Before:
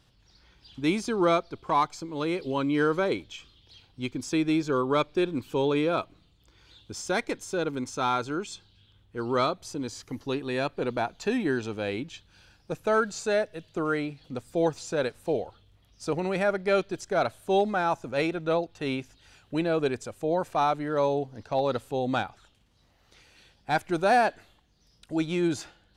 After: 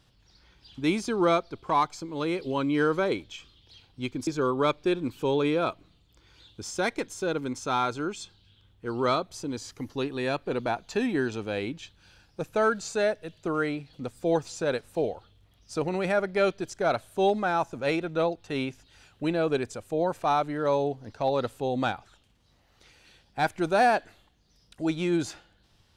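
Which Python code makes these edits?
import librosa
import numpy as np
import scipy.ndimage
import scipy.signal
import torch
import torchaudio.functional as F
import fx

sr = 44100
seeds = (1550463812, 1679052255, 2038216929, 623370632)

y = fx.edit(x, sr, fx.cut(start_s=4.27, length_s=0.31), tone=tone)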